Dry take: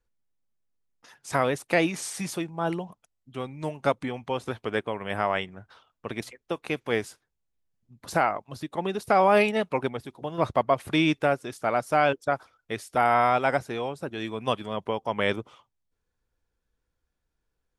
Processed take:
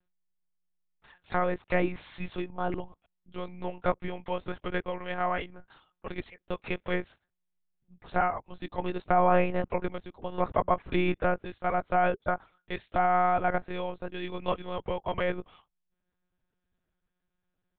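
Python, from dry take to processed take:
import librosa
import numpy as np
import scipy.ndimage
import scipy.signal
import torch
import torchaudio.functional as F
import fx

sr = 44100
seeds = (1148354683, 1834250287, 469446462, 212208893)

y = fx.lpc_monotone(x, sr, seeds[0], pitch_hz=180.0, order=10)
y = fx.env_lowpass_down(y, sr, base_hz=1900.0, full_db=-21.0)
y = y * 10.0 ** (-2.5 / 20.0)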